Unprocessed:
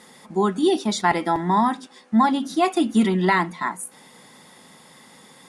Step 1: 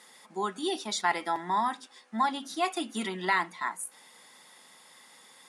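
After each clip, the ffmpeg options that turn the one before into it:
-af "highpass=f=1k:p=1,volume=-4dB"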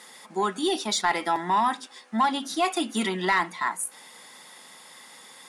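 -filter_complex "[0:a]asplit=2[a][b];[b]alimiter=limit=-22.5dB:level=0:latency=1,volume=-2dB[c];[a][c]amix=inputs=2:normalize=0,asoftclip=type=tanh:threshold=-15dB,volume=2dB"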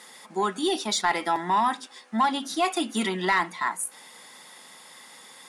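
-af anull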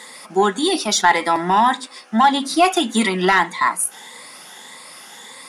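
-af "afftfilt=real='re*pow(10,7/40*sin(2*PI*(1*log(max(b,1)*sr/1024/100)/log(2)-(1.7)*(pts-256)/sr)))':imag='im*pow(10,7/40*sin(2*PI*(1*log(max(b,1)*sr/1024/100)/log(2)-(1.7)*(pts-256)/sr)))':win_size=1024:overlap=0.75,volume=8dB"

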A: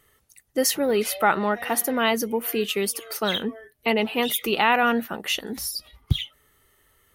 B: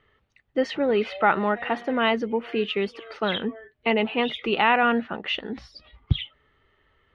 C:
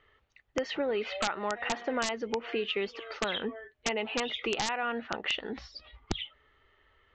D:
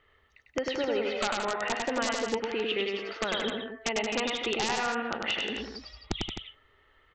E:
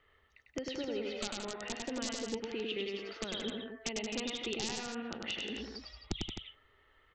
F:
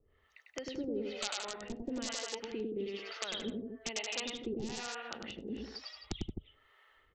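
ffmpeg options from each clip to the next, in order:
-af "lowpass=f=3.3k:w=0.5412,lowpass=f=3.3k:w=1.3066"
-af "equalizer=f=170:w=0.82:g=-9,acompressor=threshold=-27dB:ratio=12,aresample=16000,aeval=exprs='(mod(10*val(0)+1,2)-1)/10':c=same,aresample=44100"
-af "aecho=1:1:99.13|174.9|259.5:0.708|0.398|0.355"
-filter_complex "[0:a]acrossover=split=410|3000[a][b][c];[b]acompressor=threshold=-45dB:ratio=4[d];[a][d][c]amix=inputs=3:normalize=0,volume=-3.5dB"
-filter_complex "[0:a]acrossover=split=510[a][b];[a]aeval=exprs='val(0)*(1-1/2+1/2*cos(2*PI*1.1*n/s))':c=same[c];[b]aeval=exprs='val(0)*(1-1/2-1/2*cos(2*PI*1.1*n/s))':c=same[d];[c][d]amix=inputs=2:normalize=0,volume=4dB"

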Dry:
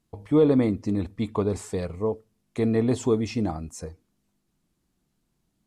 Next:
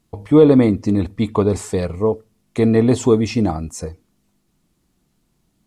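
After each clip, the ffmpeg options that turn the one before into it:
-af "bandreject=f=1.6k:w=25,volume=8.5dB"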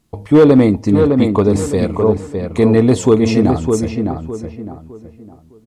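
-filter_complex "[0:a]asoftclip=type=hard:threshold=-6dB,asplit=2[a][b];[b]adelay=609,lowpass=f=2k:p=1,volume=-4.5dB,asplit=2[c][d];[d]adelay=609,lowpass=f=2k:p=1,volume=0.32,asplit=2[e][f];[f]adelay=609,lowpass=f=2k:p=1,volume=0.32,asplit=2[g][h];[h]adelay=609,lowpass=f=2k:p=1,volume=0.32[i];[c][e][g][i]amix=inputs=4:normalize=0[j];[a][j]amix=inputs=2:normalize=0,volume=3dB"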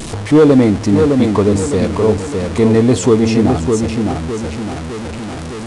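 -af "aeval=exprs='val(0)+0.5*0.112*sgn(val(0))':c=same,aresample=22050,aresample=44100,volume=-1dB"

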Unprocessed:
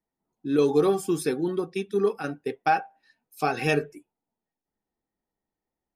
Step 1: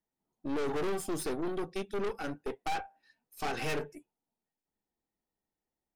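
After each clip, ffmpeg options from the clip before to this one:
-af "aeval=exprs='(tanh(35.5*val(0)+0.7)-tanh(0.7))/35.5':c=same"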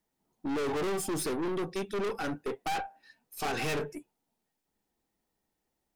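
-af "asoftclip=type=tanh:threshold=-36dB,volume=8dB"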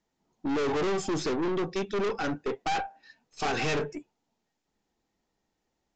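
-af "aresample=16000,aresample=44100,volume=3.5dB"

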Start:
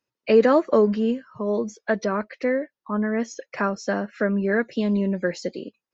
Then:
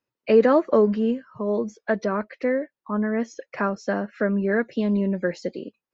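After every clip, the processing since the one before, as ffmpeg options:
-af "highshelf=f=4.1k:g=-9.5"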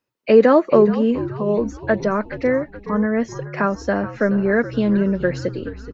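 -filter_complex "[0:a]asplit=6[a][b][c][d][e][f];[b]adelay=424,afreqshift=-70,volume=-13.5dB[g];[c]adelay=848,afreqshift=-140,volume=-19.7dB[h];[d]adelay=1272,afreqshift=-210,volume=-25.9dB[i];[e]adelay=1696,afreqshift=-280,volume=-32.1dB[j];[f]adelay=2120,afreqshift=-350,volume=-38.3dB[k];[a][g][h][i][j][k]amix=inputs=6:normalize=0,volume=4.5dB"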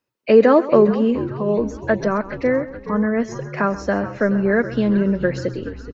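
-af "aecho=1:1:132|264|396:0.15|0.0509|0.0173"

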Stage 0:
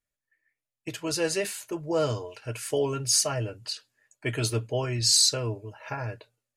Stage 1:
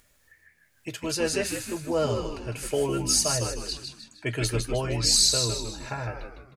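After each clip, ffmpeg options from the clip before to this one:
-filter_complex "[0:a]acompressor=mode=upward:threshold=-44dB:ratio=2.5,asplit=6[a][b][c][d][e][f];[b]adelay=155,afreqshift=-85,volume=-5.5dB[g];[c]adelay=310,afreqshift=-170,volume=-13dB[h];[d]adelay=465,afreqshift=-255,volume=-20.6dB[i];[e]adelay=620,afreqshift=-340,volume=-28.1dB[j];[f]adelay=775,afreqshift=-425,volume=-35.6dB[k];[a][g][h][i][j][k]amix=inputs=6:normalize=0"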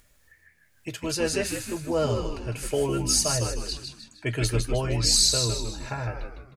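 -af "lowshelf=f=110:g=6"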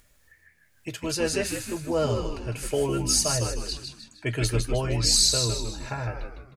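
-af anull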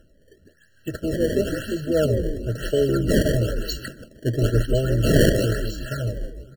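-filter_complex "[0:a]acrossover=split=700[a][b];[b]acrusher=samples=19:mix=1:aa=0.000001:lfo=1:lforange=30.4:lforate=1[c];[a][c]amix=inputs=2:normalize=0,afftfilt=real='re*eq(mod(floor(b*sr/1024/660),2),0)':imag='im*eq(mod(floor(b*sr/1024/660),2),0)':win_size=1024:overlap=0.75,volume=5.5dB"

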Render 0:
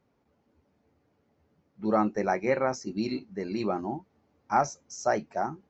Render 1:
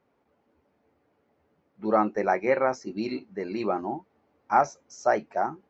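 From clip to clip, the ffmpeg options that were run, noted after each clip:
-af "bass=f=250:g=-9,treble=f=4k:g=-10,volume=3.5dB"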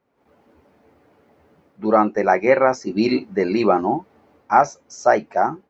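-af "dynaudnorm=f=150:g=3:m=14.5dB,volume=-1dB"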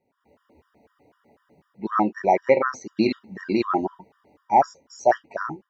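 -af "afftfilt=real='re*gt(sin(2*PI*4*pts/sr)*(1-2*mod(floor(b*sr/1024/950),2)),0)':imag='im*gt(sin(2*PI*4*pts/sr)*(1-2*mod(floor(b*sr/1024/950),2)),0)':win_size=1024:overlap=0.75,volume=-1.5dB"

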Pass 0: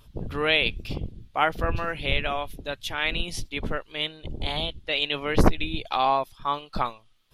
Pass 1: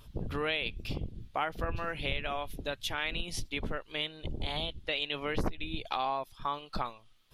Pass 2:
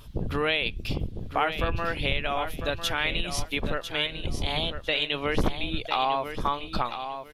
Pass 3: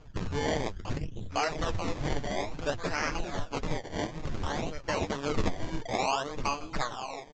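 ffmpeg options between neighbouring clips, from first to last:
-af "acompressor=threshold=-32dB:ratio=3"
-af "aecho=1:1:1000|2000|3000:0.355|0.0781|0.0172,volume=6.5dB"
-af "acrusher=samples=23:mix=1:aa=0.000001:lfo=1:lforange=23:lforate=0.57,flanger=delay=6.3:depth=4.7:regen=37:speed=1.9:shape=sinusoidal,aresample=16000,aresample=44100"

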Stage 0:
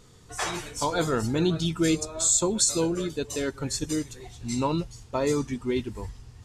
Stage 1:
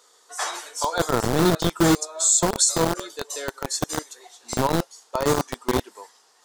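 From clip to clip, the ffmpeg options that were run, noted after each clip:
-filter_complex "[0:a]acrossover=split=500[a][b];[a]acrusher=bits=3:mix=0:aa=0.000001[c];[c][b]amix=inputs=2:normalize=0,equalizer=f=2.5k:w=2.1:g=-8,volume=4dB"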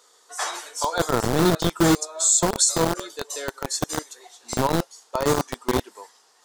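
-af anull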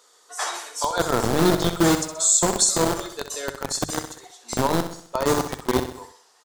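-filter_complex "[0:a]bandreject=f=50:t=h:w=6,bandreject=f=100:t=h:w=6,bandreject=f=150:t=h:w=6,asplit=2[a][b];[b]aecho=0:1:64|128|192|256|320:0.335|0.164|0.0804|0.0394|0.0193[c];[a][c]amix=inputs=2:normalize=0"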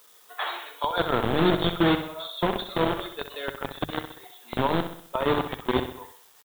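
-af "aresample=8000,aresample=44100,acrusher=bits=9:mix=0:aa=0.000001,aemphasis=mode=production:type=75kf,volume=-3dB"

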